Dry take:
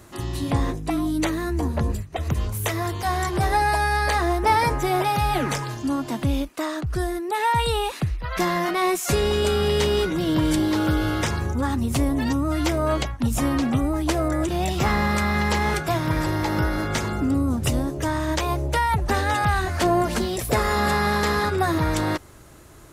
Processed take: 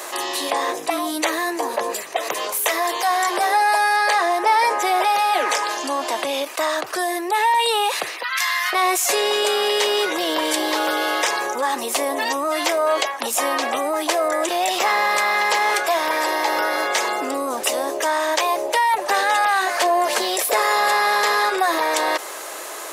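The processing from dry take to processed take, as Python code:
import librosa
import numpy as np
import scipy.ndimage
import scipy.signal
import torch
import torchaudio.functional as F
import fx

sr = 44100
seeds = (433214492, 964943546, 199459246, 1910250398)

y = fx.bessel_lowpass(x, sr, hz=11000.0, order=2, at=(3.96, 6.44))
y = fx.highpass(y, sr, hz=1300.0, slope=24, at=(8.23, 8.73))
y = scipy.signal.sosfilt(scipy.signal.butter(4, 490.0, 'highpass', fs=sr, output='sos'), y)
y = fx.notch(y, sr, hz=1400.0, q=12.0)
y = fx.env_flatten(y, sr, amount_pct=50)
y = F.gain(torch.from_numpy(y), 2.0).numpy()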